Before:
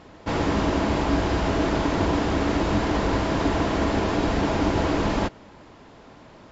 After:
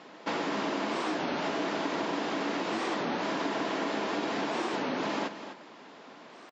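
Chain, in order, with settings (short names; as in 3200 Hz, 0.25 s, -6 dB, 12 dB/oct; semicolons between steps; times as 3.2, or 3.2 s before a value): HPF 180 Hz 24 dB/oct; tilt +2 dB/oct; compressor, threshold -28 dBFS, peak gain reduction 7.5 dB; air absorption 94 m; echo 0.253 s -11 dB; record warp 33 1/3 rpm, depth 250 cents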